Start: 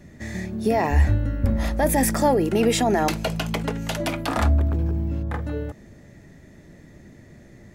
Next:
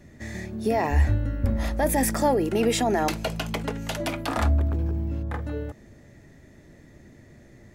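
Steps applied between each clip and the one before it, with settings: peaking EQ 180 Hz -6 dB 0.27 oct; trim -2.5 dB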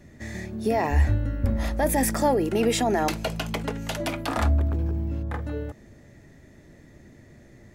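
no audible change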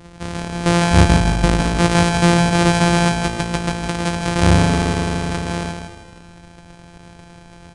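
sorted samples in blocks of 256 samples; on a send: feedback delay 158 ms, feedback 40%, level -6 dB; on the sum: resampled via 22.05 kHz; trim +8 dB

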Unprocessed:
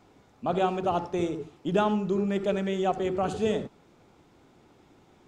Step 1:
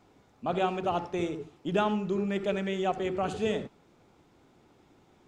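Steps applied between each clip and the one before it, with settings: dynamic bell 2.3 kHz, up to +5 dB, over -48 dBFS, Q 1.1; trim -3 dB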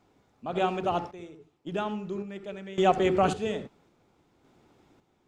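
random-step tremolo 1.8 Hz, depth 90%; trim +7 dB

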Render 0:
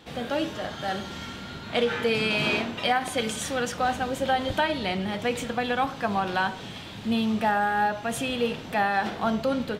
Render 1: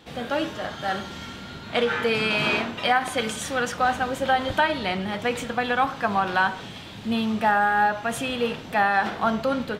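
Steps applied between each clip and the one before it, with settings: dynamic bell 1.3 kHz, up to +6 dB, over -38 dBFS, Q 0.93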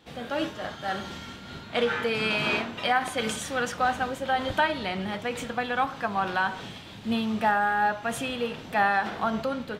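random flutter of the level, depth 55%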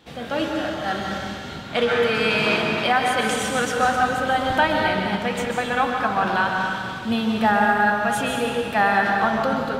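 reverberation RT60 2.0 s, pre-delay 118 ms, DRR 1 dB; trim +4 dB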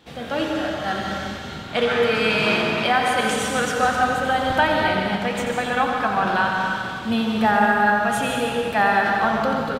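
delay 88 ms -8.5 dB

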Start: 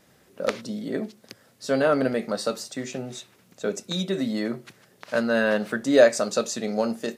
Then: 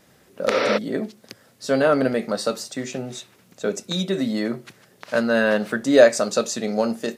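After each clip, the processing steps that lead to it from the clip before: spectral replace 0.54–0.75 s, 250–5900 Hz before; trim +3 dB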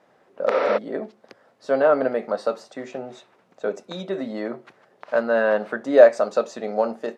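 band-pass filter 770 Hz, Q 1.1; trim +3 dB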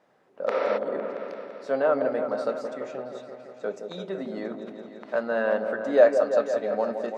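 delay with an opening low-pass 169 ms, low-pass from 750 Hz, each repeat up 1 oct, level -6 dB; trim -5.5 dB

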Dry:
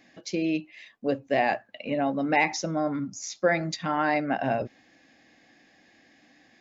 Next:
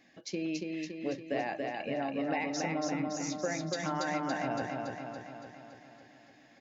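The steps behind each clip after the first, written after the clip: compression, threshold -26 dBFS, peak gain reduction 9 dB; on a send: feedback delay 282 ms, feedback 59%, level -3 dB; on the sum: trim -5 dB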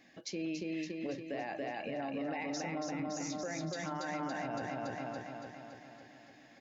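peak limiter -31 dBFS, peak gain reduction 10.5 dB; trim +1 dB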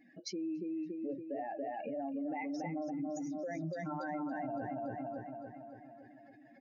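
spectral contrast enhancement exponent 2.2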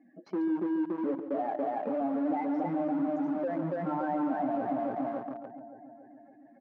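in parallel at -11 dB: companded quantiser 2-bit; on the sum: Chebyshev band-pass 210–1100 Hz, order 2; echo from a far wall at 24 m, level -11 dB; trim +3.5 dB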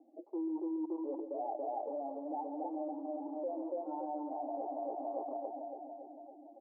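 reverse; compression 12:1, threshold -39 dBFS, peak gain reduction 13.5 dB; reverse; elliptic band-pass 320–890 Hz, stop band 40 dB; trim +5.5 dB

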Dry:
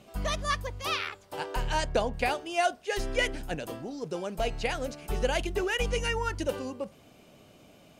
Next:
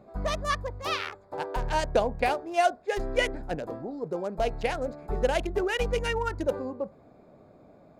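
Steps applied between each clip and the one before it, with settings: local Wiener filter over 15 samples; peaking EQ 620 Hz +4 dB 1.9 oct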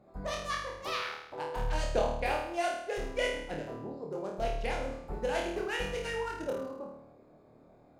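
flutter echo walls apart 4.5 m, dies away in 0.76 s; harmonic-percussive split harmonic -5 dB; trim -5.5 dB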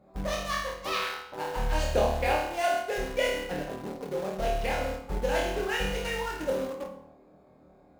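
in parallel at -8.5 dB: bit crusher 6-bit; on the sum: reverberation RT60 0.60 s, pre-delay 3 ms, DRR 3 dB

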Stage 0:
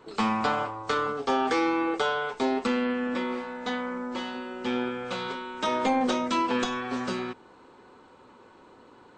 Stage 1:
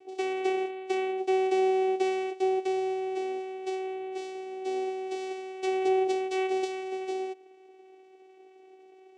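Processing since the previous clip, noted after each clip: vocoder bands 4, saw 378 Hz; high-order bell 1.3 kHz -13.5 dB 1.2 oct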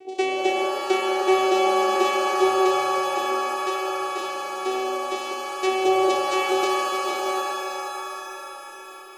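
pitch-shifted reverb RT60 3.9 s, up +7 st, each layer -2 dB, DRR 4.5 dB; trim +8.5 dB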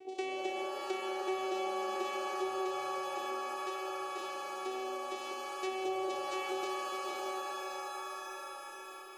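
compression 2:1, threshold -33 dBFS, peak gain reduction 10.5 dB; trim -7 dB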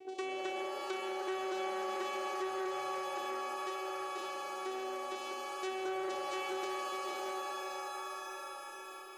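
transformer saturation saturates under 1 kHz

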